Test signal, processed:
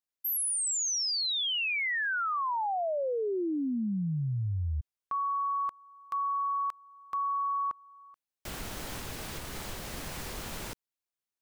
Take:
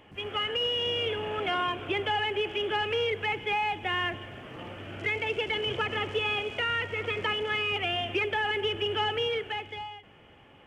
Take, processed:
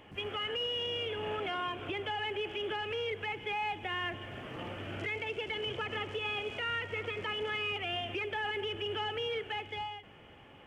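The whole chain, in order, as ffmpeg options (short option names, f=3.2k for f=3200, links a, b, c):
-af "alimiter=level_in=3.5dB:limit=-24dB:level=0:latency=1:release=313,volume=-3.5dB"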